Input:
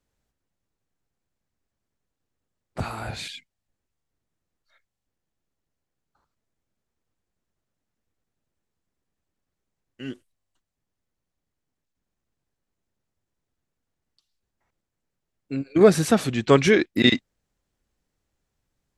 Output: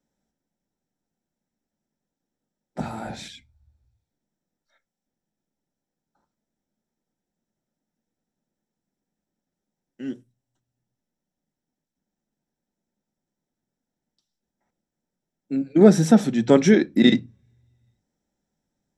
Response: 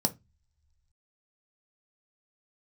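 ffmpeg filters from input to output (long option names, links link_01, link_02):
-filter_complex "[0:a]asplit=2[link_01][link_02];[1:a]atrim=start_sample=2205,lowpass=8900[link_03];[link_02][link_03]afir=irnorm=-1:irlink=0,volume=-5.5dB[link_04];[link_01][link_04]amix=inputs=2:normalize=0,volume=-7dB"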